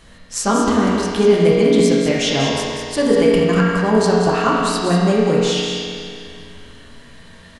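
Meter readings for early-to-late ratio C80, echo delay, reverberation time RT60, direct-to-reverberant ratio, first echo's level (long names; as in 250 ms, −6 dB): −1.0 dB, 194 ms, 2.4 s, −6.5 dB, −5.5 dB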